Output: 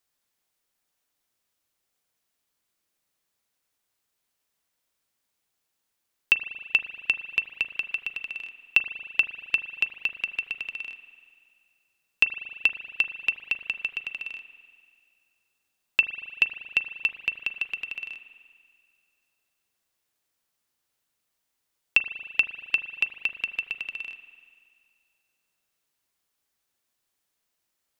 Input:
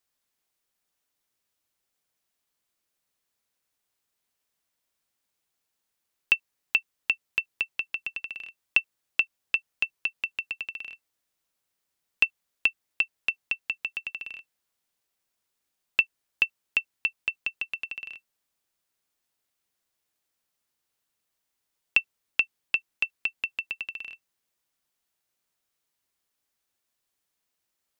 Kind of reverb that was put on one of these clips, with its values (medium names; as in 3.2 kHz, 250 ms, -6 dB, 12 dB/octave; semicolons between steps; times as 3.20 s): spring tank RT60 2.1 s, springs 38 ms, chirp 75 ms, DRR 10 dB; trim +1.5 dB